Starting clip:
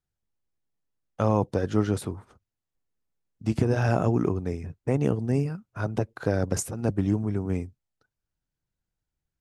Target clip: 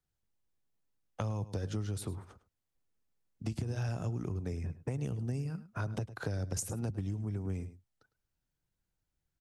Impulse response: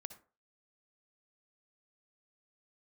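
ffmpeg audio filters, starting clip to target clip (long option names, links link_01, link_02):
-filter_complex "[0:a]acrossover=split=140|3000[link_01][link_02][link_03];[link_02]acompressor=threshold=-36dB:ratio=4[link_04];[link_01][link_04][link_03]amix=inputs=3:normalize=0,asplit=2[link_05][link_06];[link_06]adelay=105,volume=-17dB,highshelf=frequency=4000:gain=-2.36[link_07];[link_05][link_07]amix=inputs=2:normalize=0,acompressor=threshold=-32dB:ratio=6"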